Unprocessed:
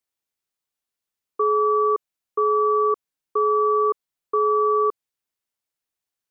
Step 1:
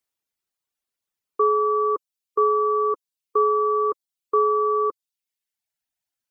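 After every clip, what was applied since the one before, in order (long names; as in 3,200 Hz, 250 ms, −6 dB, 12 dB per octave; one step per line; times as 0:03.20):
reverb reduction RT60 1 s
level +2 dB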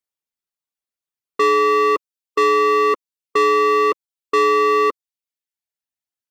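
leveller curve on the samples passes 3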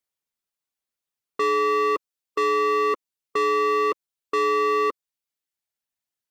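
brickwall limiter −20 dBFS, peak gain reduction 9 dB
level +2 dB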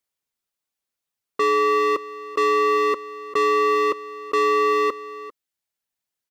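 single-tap delay 397 ms −16.5 dB
level +2.5 dB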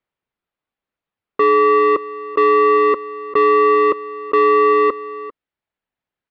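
high-frequency loss of the air 450 metres
level +8 dB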